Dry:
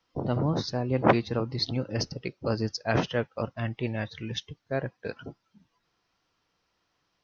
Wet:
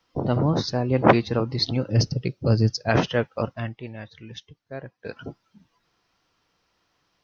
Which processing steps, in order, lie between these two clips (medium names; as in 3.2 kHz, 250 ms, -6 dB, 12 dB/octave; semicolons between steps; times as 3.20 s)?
1.90–2.89 s: graphic EQ 125/1000/2000 Hz +9/-6/-4 dB; 3.49–5.26 s: dip -11 dB, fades 0.29 s; trim +5 dB